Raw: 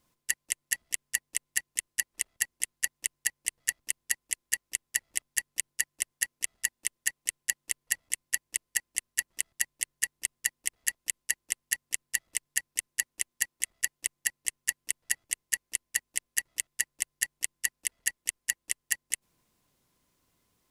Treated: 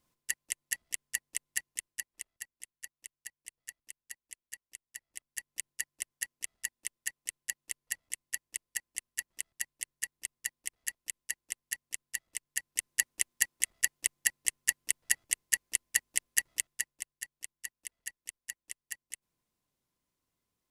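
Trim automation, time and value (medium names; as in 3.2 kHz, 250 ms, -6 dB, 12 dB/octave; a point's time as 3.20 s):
1.63 s -4.5 dB
2.56 s -16.5 dB
5.02 s -16.5 dB
5.59 s -7 dB
12.46 s -7 dB
12.94 s +1 dB
16.53 s +1 dB
17.15 s -12 dB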